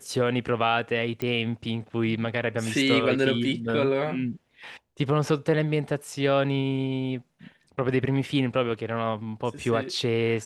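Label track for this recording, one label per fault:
1.220000	1.220000	pop -16 dBFS

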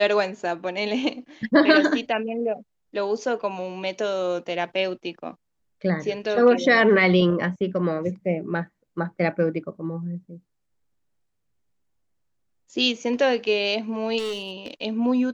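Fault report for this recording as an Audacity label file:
14.180000	14.710000	clipped -25 dBFS

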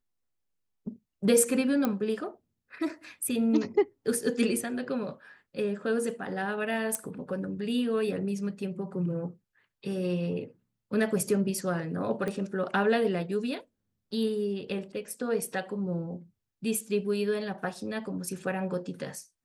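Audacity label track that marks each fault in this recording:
1.850000	1.850000	pop -14 dBFS
6.950000	6.950000	pop -17 dBFS
12.280000	12.280000	pop -21 dBFS

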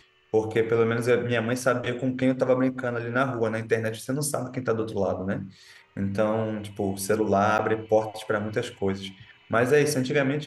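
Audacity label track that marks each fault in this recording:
7.580000	7.590000	dropout 9.2 ms

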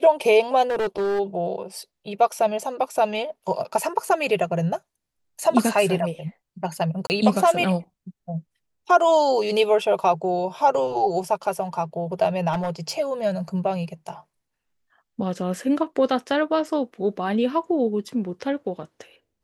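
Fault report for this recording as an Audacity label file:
0.700000	1.200000	clipped -20.5 dBFS
7.070000	7.100000	dropout 29 ms
12.520000	12.980000	clipped -21 dBFS

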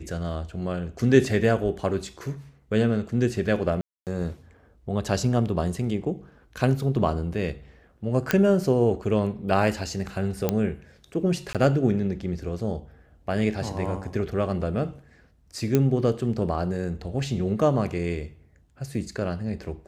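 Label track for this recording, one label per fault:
3.810000	4.070000	dropout 258 ms
8.310000	8.310000	pop -6 dBFS
10.490000	10.490000	pop -9 dBFS
11.530000	11.550000	dropout 17 ms
15.750000	15.750000	pop -8 dBFS

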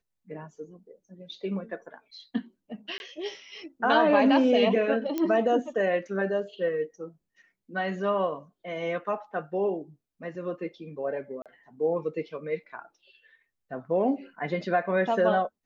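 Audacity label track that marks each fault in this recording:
2.980000	3.000000	dropout 21 ms
5.180000	5.180000	pop -16 dBFS
11.420000	11.460000	dropout 37 ms

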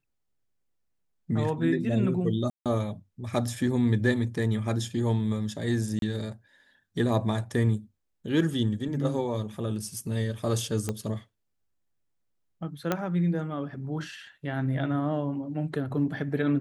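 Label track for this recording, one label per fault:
2.500000	2.660000	dropout 157 ms
5.990000	6.020000	dropout 32 ms
10.890000	10.890000	pop -16 dBFS
12.920000	12.920000	pop -12 dBFS

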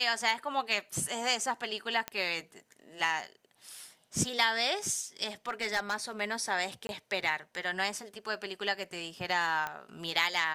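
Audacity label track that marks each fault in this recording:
2.080000	2.080000	pop -17 dBFS
5.480000	5.950000	clipped -24 dBFS
6.870000	6.890000	dropout 21 ms
9.670000	9.670000	pop -20 dBFS

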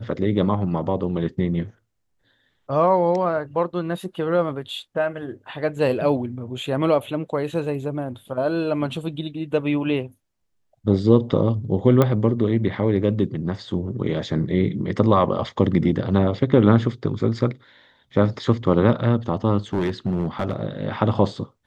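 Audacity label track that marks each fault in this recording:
12.020000	12.020000	pop -7 dBFS
19.730000	20.560000	clipped -17.5 dBFS

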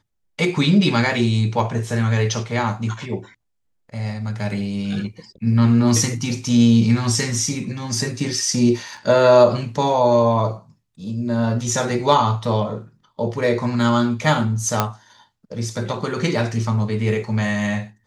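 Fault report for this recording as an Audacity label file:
1.590000	1.590000	dropout 2.6 ms
8.970000	8.970000	dropout 4.5 ms
14.800000	14.800000	pop -2 dBFS

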